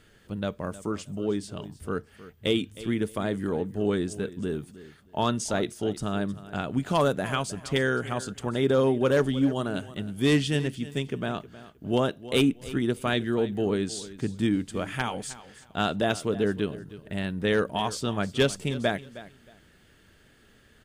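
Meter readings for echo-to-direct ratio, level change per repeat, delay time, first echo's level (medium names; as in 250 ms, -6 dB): -16.5 dB, -13.0 dB, 313 ms, -16.5 dB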